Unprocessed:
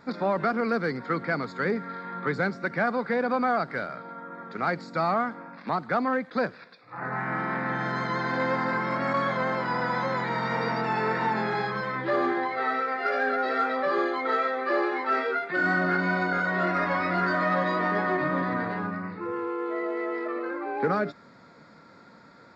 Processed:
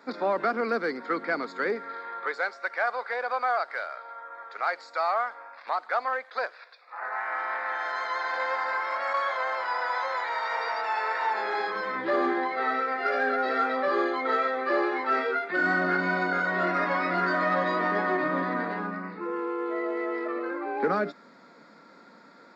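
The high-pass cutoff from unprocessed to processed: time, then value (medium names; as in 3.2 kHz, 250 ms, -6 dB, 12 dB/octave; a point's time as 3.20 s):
high-pass 24 dB/octave
1.57 s 260 Hz
2.49 s 580 Hz
11.19 s 580 Hz
12.07 s 200 Hz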